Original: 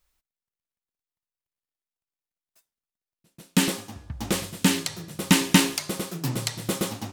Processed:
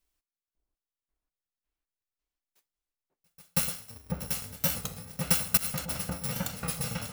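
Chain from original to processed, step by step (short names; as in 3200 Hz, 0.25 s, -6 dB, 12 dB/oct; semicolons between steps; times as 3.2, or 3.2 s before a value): FFT order left unsorted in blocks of 128 samples; repeats that get brighter 0.548 s, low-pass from 750 Hz, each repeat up 1 oct, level 0 dB; 5.57–6.13 negative-ratio compressor -25 dBFS, ratio -0.5; record warp 33 1/3 rpm, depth 100 cents; gain -7 dB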